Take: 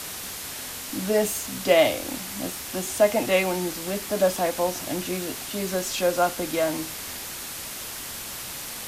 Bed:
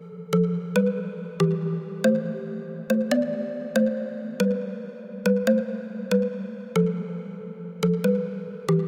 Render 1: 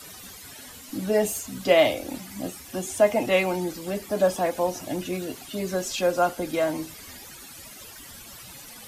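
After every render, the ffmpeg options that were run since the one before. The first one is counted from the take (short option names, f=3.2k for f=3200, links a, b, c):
-af "afftdn=nr=14:nf=-36"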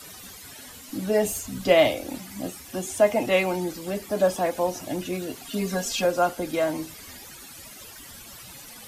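-filter_complex "[0:a]asettb=1/sr,asplit=3[a][b][c];[a]atrim=end=1.264[d];[b]atrim=start=1.26:end=1.88,asetpts=PTS-STARTPTS,afade=t=in:d=0.004:c=qsin,afade=t=out:st=0.616:d=0.004:c=qsin,lowshelf=f=110:g=10[e];[c]atrim=start=1.876[f];[d][e]acrossfade=d=0.004:c1=hsin:c2=qsin[g];[g][f]acrossfade=d=0.004:c1=qsin:c2=hsin,asettb=1/sr,asplit=3[h][i][j];[h]atrim=end=5.454[k];[i]atrim=start=5.45:end=6.05,asetpts=PTS-STARTPTS,afade=t=in:d=0.004:c=qsin,afade=t=out:st=0.596:d=0.004:c=qsin,aecho=1:1:4.3:0.81,atrim=end_sample=26460[l];[j]atrim=start=6.046[m];[k][l]acrossfade=d=0.004:c1=hsin:c2=qsin[n];[n][m]acrossfade=d=0.004:c1=qsin:c2=hsin"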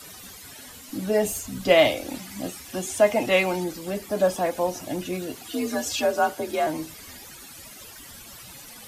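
-filter_complex "[0:a]asettb=1/sr,asplit=3[a][b][c];[a]atrim=end=1.704[d];[b]atrim=start=1.7:end=3.64,asetpts=PTS-STARTPTS,afade=t=in:d=0.004:c=qsin,afade=t=out:st=1.936:d=0.004:c=qsin,equalizer=f=3.3k:w=0.39:g=3[e];[c]atrim=start=3.636[f];[d][e]acrossfade=d=0.004:c1=hsin:c2=qsin[g];[g][f]acrossfade=d=0.004:c1=qsin:c2=hsin,asettb=1/sr,asplit=3[h][i][j];[h]atrim=end=5.434[k];[i]atrim=start=5.43:end=6.67,asetpts=PTS-STARTPTS,afade=t=in:d=0.004:c=qsin,afade=t=out:st=1.236:d=0.004:c=qsin,afreqshift=53[l];[j]atrim=start=6.666[m];[k][l]acrossfade=d=0.004:c1=hsin:c2=qsin[n];[n][m]acrossfade=d=0.004:c1=qsin:c2=hsin"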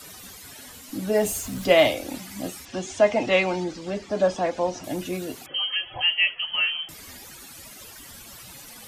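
-filter_complex "[0:a]asettb=1/sr,asplit=3[a][b][c];[a]atrim=end=1.154[d];[b]atrim=start=1.15:end=1.66,asetpts=PTS-STARTPTS,afade=t=in:d=0.004:c=qsin,afade=t=out:st=0.506:d=0.004:c=qsin,aeval=exprs='val(0)+0.5*0.0133*sgn(val(0))':c=same[e];[c]atrim=start=1.656[f];[d][e]acrossfade=d=0.004:c1=hsin:c2=qsin[g];[g][f]acrossfade=d=0.004:c1=qsin:c2=hsin,asettb=1/sr,asplit=3[h][i][j];[h]atrim=end=2.654[k];[i]atrim=start=2.65:end=4.84,asetpts=PTS-STARTPTS,afade=t=in:d=0.004:c=qsin,afade=t=out:st=2.186:d=0.004:c=qsin,lowpass=f=6.5k:w=0.5412,lowpass=f=6.5k:w=1.3066[l];[j]atrim=start=4.836[m];[k][l]acrossfade=d=0.004:c1=hsin:c2=qsin[n];[n][m]acrossfade=d=0.004:c1=qsin:c2=hsin,asettb=1/sr,asplit=3[o][p][q];[o]atrim=end=5.464[r];[p]atrim=start=5.46:end=6.89,asetpts=PTS-STARTPTS,afade=t=in:d=0.004:c=qsin,afade=t=out:st=1.426:d=0.004:c=qsin,lowpass=f=2.9k:t=q:w=0.5098,lowpass=f=2.9k:t=q:w=0.6013,lowpass=f=2.9k:t=q:w=0.9,lowpass=f=2.9k:t=q:w=2.563,afreqshift=-3400[s];[q]atrim=start=6.886[t];[r][s]acrossfade=d=0.004:c1=hsin:c2=qsin[u];[u][t]acrossfade=d=0.004:c1=qsin:c2=hsin"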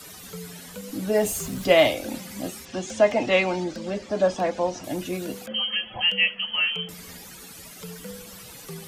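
-filter_complex "[1:a]volume=-18dB[a];[0:a][a]amix=inputs=2:normalize=0"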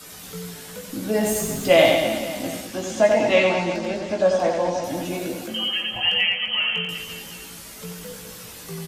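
-filter_complex "[0:a]asplit=2[a][b];[b]adelay=18,volume=-5dB[c];[a][c]amix=inputs=2:normalize=0,aecho=1:1:90|202.5|343.1|518.9|738.6:0.631|0.398|0.251|0.158|0.1"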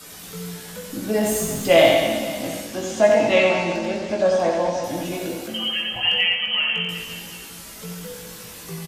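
-filter_complex "[0:a]asplit=2[a][b];[b]adelay=24,volume=-11dB[c];[a][c]amix=inputs=2:normalize=0,aecho=1:1:63|126|189|252|315|378|441:0.282|0.163|0.0948|0.055|0.0319|0.0185|0.0107"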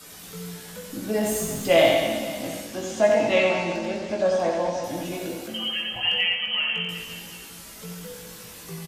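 -af "volume=-3.5dB"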